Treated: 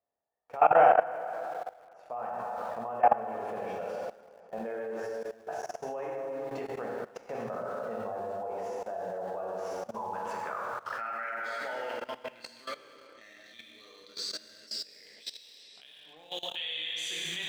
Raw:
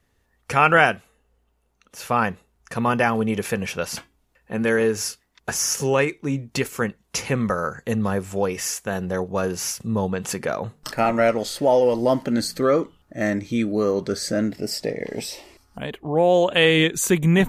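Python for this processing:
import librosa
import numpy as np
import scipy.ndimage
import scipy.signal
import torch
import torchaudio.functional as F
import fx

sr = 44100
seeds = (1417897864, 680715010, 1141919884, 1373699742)

p1 = fx.filter_sweep_bandpass(x, sr, from_hz=680.0, to_hz=3700.0, start_s=9.29, end_s=13.15, q=4.1)
p2 = fx.rev_plate(p1, sr, seeds[0], rt60_s=2.3, hf_ratio=0.75, predelay_ms=0, drr_db=-3.5)
p3 = np.where(np.abs(p2) >= 10.0 ** (-40.0 / 20.0), p2, 0.0)
p4 = p2 + (p3 * librosa.db_to_amplitude(-9.5))
p5 = fx.echo_bbd(p4, sr, ms=206, stages=4096, feedback_pct=50, wet_db=-22)
y = fx.level_steps(p5, sr, step_db=18)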